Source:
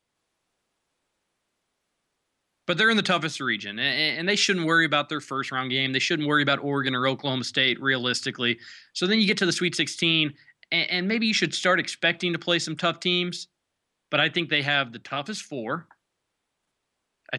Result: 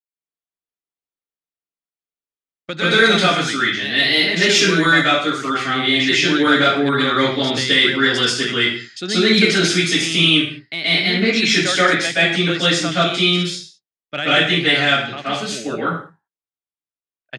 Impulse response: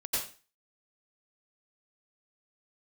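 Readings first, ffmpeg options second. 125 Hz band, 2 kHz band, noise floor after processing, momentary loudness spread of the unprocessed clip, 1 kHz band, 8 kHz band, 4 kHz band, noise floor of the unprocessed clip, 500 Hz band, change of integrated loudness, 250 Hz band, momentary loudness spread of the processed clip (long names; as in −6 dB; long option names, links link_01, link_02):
+7.5 dB, +8.0 dB, below −85 dBFS, 10 LU, +8.5 dB, +9.0 dB, +9.0 dB, −80 dBFS, +8.5 dB, +8.5 dB, +8.0 dB, 10 LU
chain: -filter_complex "[0:a]agate=range=-33dB:threshold=-36dB:ratio=3:detection=peak,acontrast=46[link_01];[1:a]atrim=start_sample=2205,afade=type=out:start_time=0.3:duration=0.01,atrim=end_sample=13671,asetrate=31311,aresample=44100[link_02];[link_01][link_02]afir=irnorm=-1:irlink=0,volume=-5.5dB"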